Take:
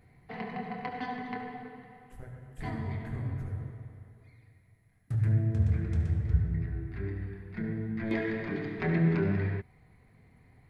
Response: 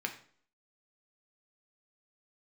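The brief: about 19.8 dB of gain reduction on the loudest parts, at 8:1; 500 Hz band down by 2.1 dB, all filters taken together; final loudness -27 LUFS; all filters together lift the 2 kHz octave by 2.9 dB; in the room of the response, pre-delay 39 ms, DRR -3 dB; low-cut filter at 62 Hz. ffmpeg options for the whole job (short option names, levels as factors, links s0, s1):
-filter_complex "[0:a]highpass=62,equalizer=f=500:t=o:g=-3,equalizer=f=2000:t=o:g=3.5,acompressor=threshold=0.00708:ratio=8,asplit=2[s0][s1];[1:a]atrim=start_sample=2205,adelay=39[s2];[s1][s2]afir=irnorm=-1:irlink=0,volume=0.944[s3];[s0][s3]amix=inputs=2:normalize=0,volume=7.08"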